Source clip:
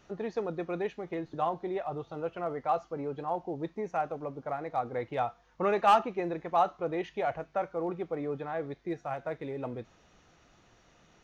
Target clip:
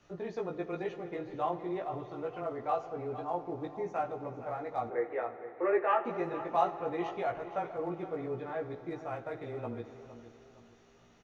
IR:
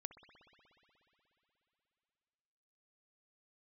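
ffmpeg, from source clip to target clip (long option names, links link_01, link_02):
-filter_complex "[0:a]afreqshift=-13,asettb=1/sr,asplit=3[link_01][link_02][link_03];[link_01]atrim=end=4.884[link_04];[link_02]atrim=start=4.88:end=6.05,asetpts=PTS-STARTPTS,afade=type=in:duration=0.004:curve=qsin,afade=type=out:start_time=1.166:duration=0.004:curve=qsin,highpass=frequency=340:width=0.5412,highpass=frequency=340:width=1.3066,equalizer=frequency=350:width_type=q:width=4:gain=8,equalizer=frequency=520:width_type=q:width=4:gain=5,equalizer=frequency=750:width_type=q:width=4:gain=-9,equalizer=frequency=1200:width_type=q:width=4:gain=-3,equalizer=frequency=1900:width_type=q:width=4:gain=8,lowpass=frequency=2100:width=0.5412,lowpass=frequency=2100:width=1.3066[link_05];[link_03]atrim=start=6.046[link_06];[link_04][link_05]acrossfade=duration=0.004:curve1=hsin:curve2=qsin[link_07];[link_07][link_06]acrossfade=duration=0.004:curve1=qsin:curve2=hsin,aecho=1:1:463|926|1389:0.2|0.0698|0.0244,asplit=2[link_08][link_09];[1:a]atrim=start_sample=2205,adelay=17[link_10];[link_09][link_10]afir=irnorm=-1:irlink=0,volume=3.5dB[link_11];[link_08][link_11]amix=inputs=2:normalize=0,volume=-5dB"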